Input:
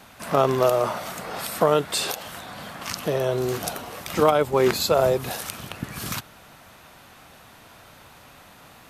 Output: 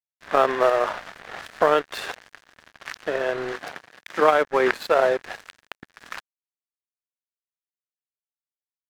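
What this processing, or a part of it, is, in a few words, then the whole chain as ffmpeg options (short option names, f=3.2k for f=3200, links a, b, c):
pocket radio on a weak battery: -filter_complex "[0:a]highpass=360,lowpass=3.1k,aeval=exprs='sgn(val(0))*max(abs(val(0))-0.02,0)':c=same,equalizer=f=1.7k:t=o:w=0.48:g=9,asettb=1/sr,asplit=3[a][b][c];[a]atrim=end=3.614[d];[b]atrim=start=3.61:end=4.34,asetpts=PTS-STARTPTS,afade=t=in:d=0.004:c=qsin,afade=t=out:st=0.726:d=0.004:c=qsin,highpass=98[e];[c]atrim=start=4.336[f];[d][e]acrossfade=d=0.004:c1=hsin:c2=qsin[g];[g][f]acrossfade=d=0.004:c1=qsin:c2=hsin,volume=2dB"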